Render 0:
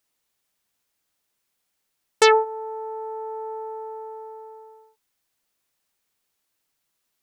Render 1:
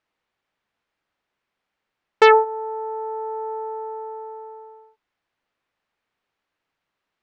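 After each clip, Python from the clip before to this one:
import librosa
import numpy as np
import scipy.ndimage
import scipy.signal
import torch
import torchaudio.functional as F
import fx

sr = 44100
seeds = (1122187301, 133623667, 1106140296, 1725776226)

y = scipy.signal.sosfilt(scipy.signal.butter(2, 2300.0, 'lowpass', fs=sr, output='sos'), x)
y = fx.low_shelf(y, sr, hz=420.0, db=-4.0)
y = y * librosa.db_to_amplitude(5.0)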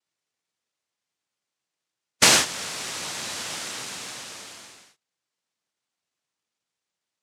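y = fx.spec_gate(x, sr, threshold_db=-25, keep='strong')
y = fx.noise_vocoder(y, sr, seeds[0], bands=1)
y = y * librosa.db_to_amplitude(-4.5)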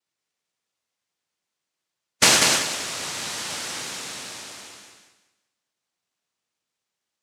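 y = fx.echo_feedback(x, sr, ms=191, feedback_pct=28, wet_db=-3.5)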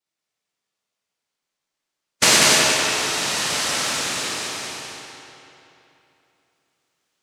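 y = fx.rider(x, sr, range_db=4, speed_s=2.0)
y = fx.rev_freeverb(y, sr, rt60_s=3.0, hf_ratio=0.8, predelay_ms=0, drr_db=-2.0)
y = y * librosa.db_to_amplitude(1.5)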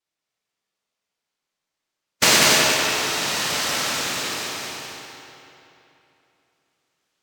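y = np.interp(np.arange(len(x)), np.arange(len(x))[::2], x[::2])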